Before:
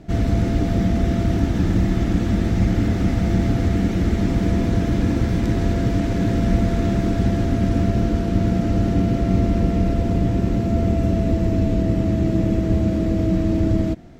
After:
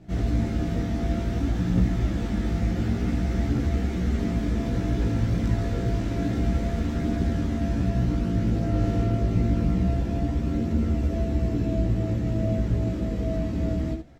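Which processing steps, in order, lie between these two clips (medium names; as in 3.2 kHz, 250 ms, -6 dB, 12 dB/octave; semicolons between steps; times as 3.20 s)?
early reflections 17 ms -7 dB, 72 ms -7.5 dB; chorus voices 2, 0.28 Hz, delay 16 ms, depth 3.3 ms; trim -4.5 dB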